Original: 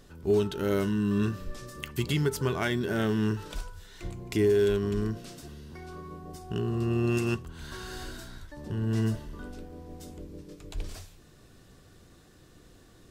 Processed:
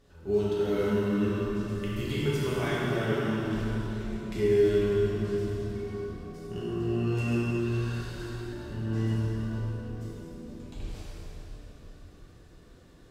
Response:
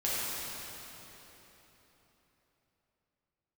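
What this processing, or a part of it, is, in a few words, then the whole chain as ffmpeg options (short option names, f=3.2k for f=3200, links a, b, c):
swimming-pool hall: -filter_complex "[1:a]atrim=start_sample=2205[a];[0:a][a]afir=irnorm=-1:irlink=0,highshelf=f=5.7k:g=-7.5,volume=-8dB"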